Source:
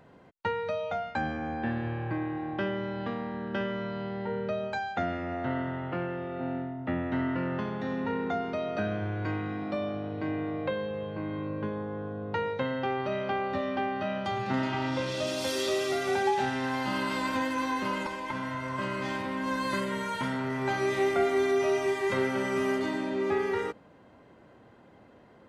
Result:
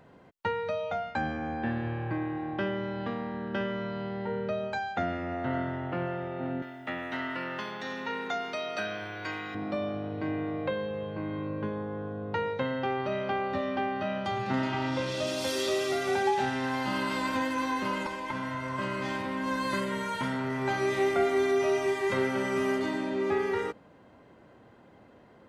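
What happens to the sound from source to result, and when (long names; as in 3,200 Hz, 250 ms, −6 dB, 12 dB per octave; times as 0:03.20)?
0:05.00–0:05.95: delay throw 530 ms, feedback 60%, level −11.5 dB
0:06.62–0:09.55: spectral tilt +4.5 dB per octave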